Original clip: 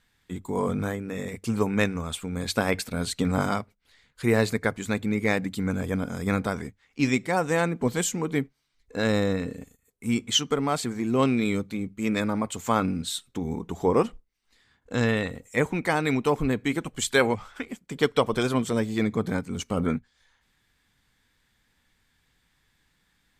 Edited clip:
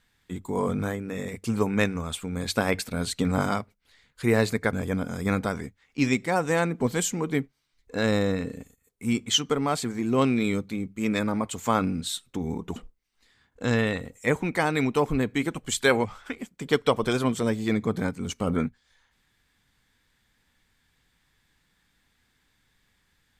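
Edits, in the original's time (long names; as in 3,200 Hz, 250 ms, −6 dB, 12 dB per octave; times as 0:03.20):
0:04.73–0:05.74: remove
0:13.77–0:14.06: remove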